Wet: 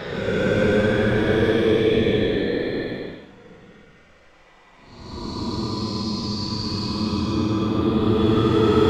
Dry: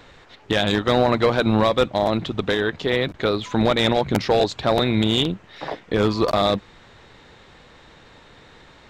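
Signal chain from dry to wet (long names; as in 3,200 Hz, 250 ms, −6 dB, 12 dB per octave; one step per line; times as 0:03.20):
reversed piece by piece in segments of 182 ms
extreme stretch with random phases 27×, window 0.05 s, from 0:05.81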